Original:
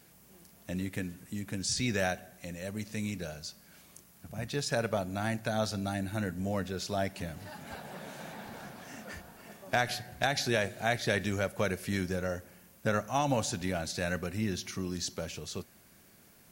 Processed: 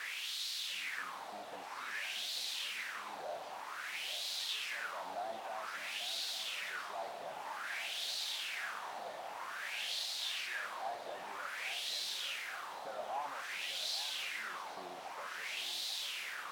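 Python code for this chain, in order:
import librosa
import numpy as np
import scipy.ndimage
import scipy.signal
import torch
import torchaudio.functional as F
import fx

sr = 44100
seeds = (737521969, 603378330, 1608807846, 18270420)

p1 = fx.riaa(x, sr, side='recording')
p2 = fx.notch(p1, sr, hz=6800.0, q=6.7)
p3 = fx.rider(p2, sr, range_db=10, speed_s=0.5)
p4 = p2 + F.gain(torch.from_numpy(p3), 0.0).numpy()
p5 = fx.tube_stage(p4, sr, drive_db=33.0, bias=0.3)
p6 = fx.level_steps(p5, sr, step_db=21)
p7 = fx.quant_dither(p6, sr, seeds[0], bits=6, dither='triangular')
p8 = fx.wah_lfo(p7, sr, hz=0.52, low_hz=690.0, high_hz=4000.0, q=4.0)
p9 = fx.echo_filtered(p8, sr, ms=840, feedback_pct=79, hz=1400.0, wet_db=-12.0)
y = F.gain(torch.from_numpy(p9), 7.5).numpy()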